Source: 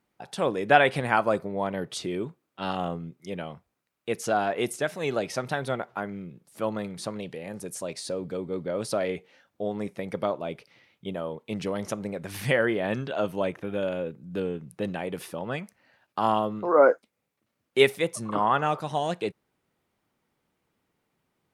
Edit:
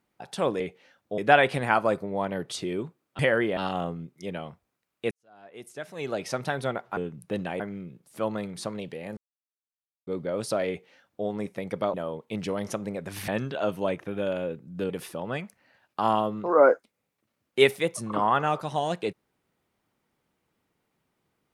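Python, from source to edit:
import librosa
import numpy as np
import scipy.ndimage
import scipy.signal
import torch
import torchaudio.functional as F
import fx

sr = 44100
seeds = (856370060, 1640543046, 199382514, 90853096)

y = fx.edit(x, sr, fx.fade_in_span(start_s=4.15, length_s=1.22, curve='qua'),
    fx.silence(start_s=7.58, length_s=0.9),
    fx.duplicate(start_s=9.09, length_s=0.58, to_s=0.6),
    fx.cut(start_s=10.35, length_s=0.77),
    fx.move(start_s=12.46, length_s=0.38, to_s=2.61),
    fx.move(start_s=14.46, length_s=0.63, to_s=6.01), tone=tone)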